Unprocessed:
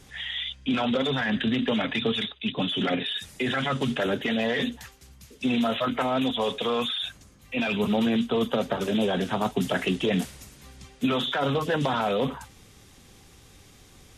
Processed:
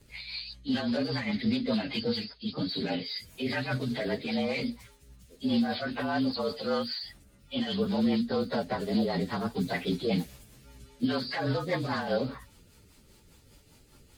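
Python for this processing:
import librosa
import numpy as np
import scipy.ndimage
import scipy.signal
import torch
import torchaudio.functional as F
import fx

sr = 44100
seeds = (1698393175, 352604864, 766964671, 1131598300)

y = fx.partial_stretch(x, sr, pct=110)
y = fx.rotary(y, sr, hz=5.0)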